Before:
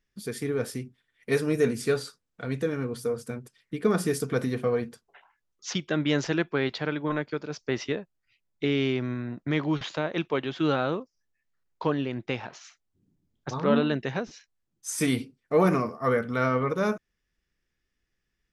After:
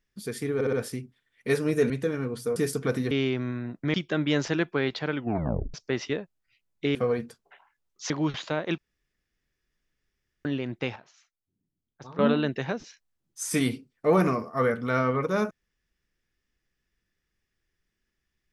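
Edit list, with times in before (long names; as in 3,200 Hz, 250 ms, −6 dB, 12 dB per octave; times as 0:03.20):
0:00.55: stutter 0.06 s, 4 plays
0:01.72–0:02.49: remove
0:03.15–0:04.03: remove
0:04.58–0:05.73: swap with 0:08.74–0:09.57
0:06.93: tape stop 0.60 s
0:10.25–0:11.92: fill with room tone
0:12.43–0:13.66: clip gain −12 dB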